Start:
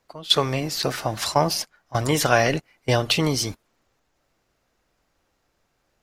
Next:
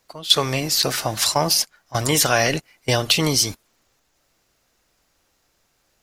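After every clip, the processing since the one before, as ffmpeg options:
ffmpeg -i in.wav -filter_complex "[0:a]highshelf=frequency=3100:gain=10.5,asplit=2[link_01][link_02];[link_02]alimiter=limit=-9.5dB:level=0:latency=1:release=111,volume=1dB[link_03];[link_01][link_03]amix=inputs=2:normalize=0,volume=-5.5dB" out.wav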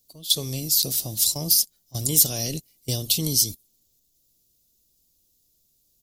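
ffmpeg -i in.wav -af "firequalizer=gain_entry='entry(180,0);entry(850,-19);entry(1500,-27);entry(3500,-2);entry(14000,14)':delay=0.05:min_phase=1,volume=-4dB" out.wav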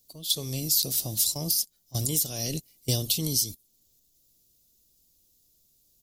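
ffmpeg -i in.wav -af "alimiter=limit=-13dB:level=0:latency=1:release=488,volume=1dB" out.wav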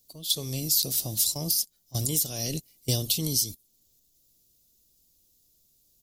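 ffmpeg -i in.wav -af anull out.wav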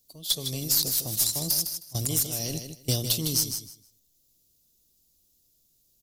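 ffmpeg -i in.wav -af "aeval=exprs='0.266*(cos(1*acos(clip(val(0)/0.266,-1,1)))-cos(1*PI/2))+0.0335*(cos(2*acos(clip(val(0)/0.266,-1,1)))-cos(2*PI/2))+0.015*(cos(5*acos(clip(val(0)/0.266,-1,1)))-cos(5*PI/2))+0.0188*(cos(7*acos(clip(val(0)/0.266,-1,1)))-cos(7*PI/2))+0.00168*(cos(8*acos(clip(val(0)/0.266,-1,1)))-cos(8*PI/2))':channel_layout=same,aecho=1:1:156|312|468:0.398|0.0756|0.0144" out.wav

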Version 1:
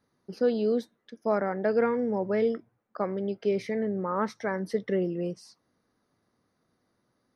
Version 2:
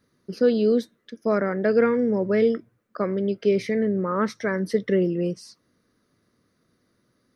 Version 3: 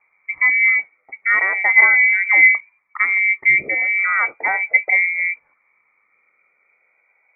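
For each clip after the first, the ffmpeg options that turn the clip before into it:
ffmpeg -i in.wav -af "equalizer=frequency=820:width_type=o:width=0.56:gain=-12.5,volume=7dB" out.wav
ffmpeg -i in.wav -af "afftfilt=real='re*pow(10,8/40*sin(2*PI*(1.1*log(max(b,1)*sr/1024/100)/log(2)-(-0.37)*(pts-256)/sr)))':imag='im*pow(10,8/40*sin(2*PI*(1.1*log(max(b,1)*sr/1024/100)/log(2)-(-0.37)*(pts-256)/sr)))':win_size=1024:overlap=0.75,lowpass=frequency=2100:width_type=q:width=0.5098,lowpass=frequency=2100:width_type=q:width=0.6013,lowpass=frequency=2100:width_type=q:width=0.9,lowpass=frequency=2100:width_type=q:width=2.563,afreqshift=-2500,volume=5.5dB" out.wav

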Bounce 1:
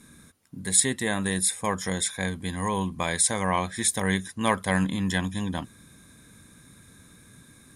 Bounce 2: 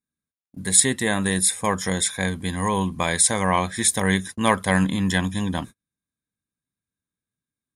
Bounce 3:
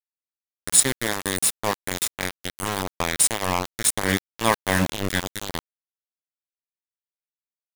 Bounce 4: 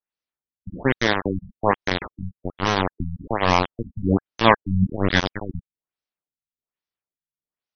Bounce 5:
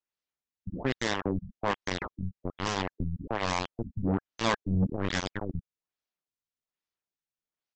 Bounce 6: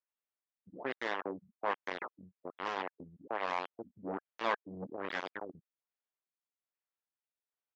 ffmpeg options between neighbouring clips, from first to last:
ffmpeg -i in.wav -af "agate=range=-43dB:threshold=-39dB:ratio=16:detection=peak,volume=4.5dB" out.wav
ffmpeg -i in.wav -af "adynamicequalizer=threshold=0.02:dfrequency=1100:dqfactor=0.88:tfrequency=1100:tqfactor=0.88:attack=5:release=100:ratio=0.375:range=2:mode=cutabove:tftype=bell,aeval=exprs='val(0)*gte(abs(val(0)),0.133)':channel_layout=same" out.wav
ffmpeg -i in.wav -filter_complex "[0:a]asplit=2[link_01][link_02];[link_02]acontrast=70,volume=0.5dB[link_03];[link_01][link_03]amix=inputs=2:normalize=0,afftfilt=real='re*lt(b*sr/1024,200*pow(6400/200,0.5+0.5*sin(2*PI*1.2*pts/sr)))':imag='im*lt(b*sr/1024,200*pow(6400/200,0.5+0.5*sin(2*PI*1.2*pts/sr)))':win_size=1024:overlap=0.75,volume=-3.5dB" out.wav
ffmpeg -i in.wav -af "acontrast=29,aresample=16000,asoftclip=type=tanh:threshold=-13dB,aresample=44100,volume=-7dB" out.wav
ffmpeg -i in.wav -af "highpass=450,lowpass=2300,volume=-3dB" out.wav

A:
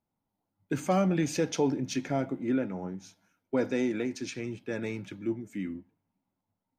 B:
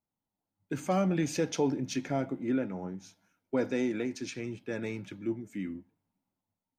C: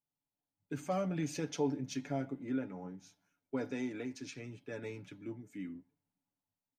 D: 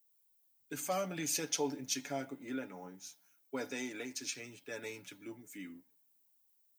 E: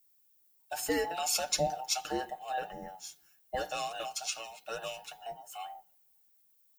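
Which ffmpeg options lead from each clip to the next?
ffmpeg -i in.wav -af "dynaudnorm=framelen=210:gausssize=7:maxgain=5.5dB,volume=-7dB" out.wav
ffmpeg -i in.wav -af "aecho=1:1:7:0.56,volume=-8dB" out.wav
ffmpeg -i in.wav -af "aemphasis=mode=production:type=riaa,volume=1.5dB" out.wav
ffmpeg -i in.wav -af "afftfilt=real='real(if(between(b,1,1008),(2*floor((b-1)/48)+1)*48-b,b),0)':imag='imag(if(between(b,1,1008),(2*floor((b-1)/48)+1)*48-b,b),0)*if(between(b,1,1008),-1,1)':win_size=2048:overlap=0.75,volume=4.5dB" out.wav

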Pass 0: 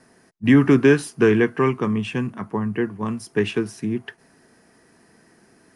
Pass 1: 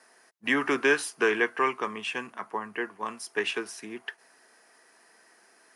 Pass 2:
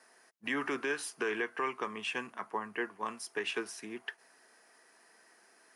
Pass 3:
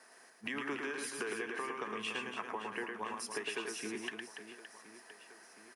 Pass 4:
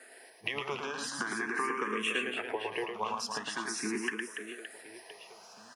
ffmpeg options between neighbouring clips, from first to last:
ffmpeg -i in.wav -af "highpass=680" out.wav
ffmpeg -i in.wav -af "alimiter=limit=-19dB:level=0:latency=1:release=197,volume=-3.5dB" out.wav
ffmpeg -i in.wav -filter_complex "[0:a]acompressor=threshold=-40dB:ratio=6,asplit=2[link_01][link_02];[link_02]aecho=0:1:110|286|567.6|1018|1739:0.631|0.398|0.251|0.158|0.1[link_03];[link_01][link_03]amix=inputs=2:normalize=0,volume=2.5dB" out.wav
ffmpeg -i in.wav -filter_complex "[0:a]asplit=2[link_01][link_02];[link_02]afreqshift=0.43[link_03];[link_01][link_03]amix=inputs=2:normalize=1,volume=9dB" out.wav

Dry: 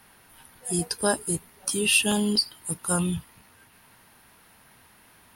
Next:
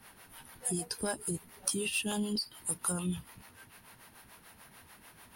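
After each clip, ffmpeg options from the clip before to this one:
ffmpeg -i in.wav -filter_complex "[0:a]aeval=exprs='0.447*(cos(1*acos(clip(val(0)/0.447,-1,1)))-cos(1*PI/2))+0.0398*(cos(5*acos(clip(val(0)/0.447,-1,1)))-cos(5*PI/2))':channel_layout=same,acompressor=threshold=-27dB:ratio=16,acrossover=split=400[link_01][link_02];[link_01]aeval=exprs='val(0)*(1-0.7/2+0.7/2*cos(2*PI*6.8*n/s))':channel_layout=same[link_03];[link_02]aeval=exprs='val(0)*(1-0.7/2-0.7/2*cos(2*PI*6.8*n/s))':channel_layout=same[link_04];[link_03][link_04]amix=inputs=2:normalize=0" out.wav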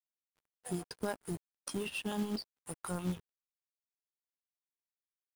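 ffmpeg -i in.wav -af "aeval=exprs='sgn(val(0))*max(abs(val(0))-0.00841,0)':channel_layout=same,lowpass=frequency=2000:poles=1,acrusher=bits=4:mode=log:mix=0:aa=0.000001,volume=1.5dB" out.wav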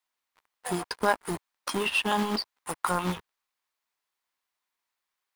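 ffmpeg -i in.wav -filter_complex "[0:a]equalizer=frequency=125:width_type=o:width=1:gain=-8,equalizer=frequency=1000:width_type=o:width=1:gain=11,equalizer=frequency=2000:width_type=o:width=1:gain=6,equalizer=frequency=4000:width_type=o:width=1:gain=4,acrossover=split=6100[link_01][link_02];[link_02]aeval=exprs='(mod(66.8*val(0)+1,2)-1)/66.8':channel_layout=same[link_03];[link_01][link_03]amix=inputs=2:normalize=0,volume=7.5dB" out.wav

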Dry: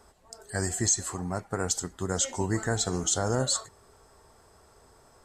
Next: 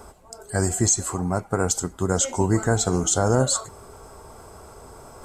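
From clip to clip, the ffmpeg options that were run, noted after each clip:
ffmpeg -i in.wav -af "equalizer=frequency=4100:width=0.85:gain=-7,areverse,acompressor=mode=upward:threshold=-43dB:ratio=2.5,areverse,bandreject=frequency=1800:width=5.6,volume=8dB" out.wav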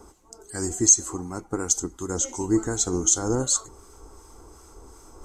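ffmpeg -i in.wav -filter_complex "[0:a]asubboost=boost=3:cutoff=72,acrossover=split=1200[link_01][link_02];[link_01]aeval=exprs='val(0)*(1-0.5/2+0.5/2*cos(2*PI*2.7*n/s))':channel_layout=same[link_03];[link_02]aeval=exprs='val(0)*(1-0.5/2-0.5/2*cos(2*PI*2.7*n/s))':channel_layout=same[link_04];[link_03][link_04]amix=inputs=2:normalize=0,equalizer=frequency=100:width_type=o:width=0.33:gain=-5,equalizer=frequency=160:width_type=o:width=0.33:gain=-5,equalizer=frequency=315:width_type=o:width=0.33:gain=11,equalizer=frequency=630:width_type=o:width=0.33:gain=-11,equalizer=frequency=1600:width_type=o:width=0.33:gain=-4,equalizer=frequency=2500:width_type=o:width=0.33:gain=-3,equalizer=frequency=6300:width_type=o:width=0.33:gain=11,volume=-3.5dB" out.wav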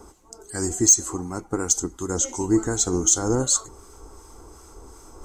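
ffmpeg -i in.wav -af "asoftclip=type=tanh:threshold=-7.5dB,volume=2.5dB" out.wav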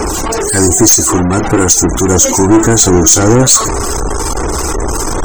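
ffmpeg -i in.wav -af "aeval=exprs='val(0)+0.5*0.0708*sgn(val(0))':channel_layout=same,afftfilt=real='re*gte(hypot(re,im),0.0224)':imag='im*gte(hypot(re,im),0.0224)':win_size=1024:overlap=0.75,aeval=exprs='0.596*(cos(1*acos(clip(val(0)/0.596,-1,1)))-cos(1*PI/2))+0.266*(cos(5*acos(clip(val(0)/0.596,-1,1)))-cos(5*PI/2))+0.0422*(cos(8*acos(clip(val(0)/0.596,-1,1)))-cos(8*PI/2))':channel_layout=same,volume=4dB" out.wav

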